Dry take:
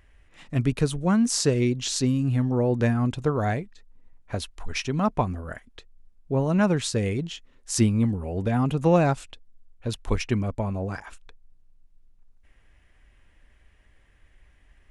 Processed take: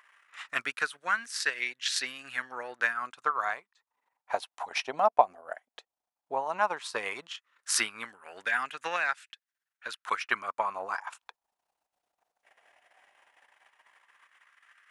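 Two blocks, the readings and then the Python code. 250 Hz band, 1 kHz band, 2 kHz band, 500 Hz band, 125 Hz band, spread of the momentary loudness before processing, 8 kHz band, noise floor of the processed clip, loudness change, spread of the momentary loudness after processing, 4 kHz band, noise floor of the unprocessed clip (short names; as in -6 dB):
-27.0 dB, +2.0 dB, +6.0 dB, -8.5 dB, under -35 dB, 13 LU, -5.0 dB, under -85 dBFS, -6.0 dB, 14 LU, -2.0 dB, -59 dBFS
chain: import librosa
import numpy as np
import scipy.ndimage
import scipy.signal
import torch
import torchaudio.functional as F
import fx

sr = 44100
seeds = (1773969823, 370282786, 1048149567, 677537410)

y = fx.dynamic_eq(x, sr, hz=7000.0, q=2.0, threshold_db=-48.0, ratio=4.0, max_db=-8)
y = fx.transient(y, sr, attack_db=5, sustain_db=-9)
y = fx.filter_lfo_highpass(y, sr, shape='sine', hz=0.14, low_hz=710.0, high_hz=1700.0, q=3.3)
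y = fx.rider(y, sr, range_db=4, speed_s=0.5)
y = y * librosa.db_to_amplitude(-2.0)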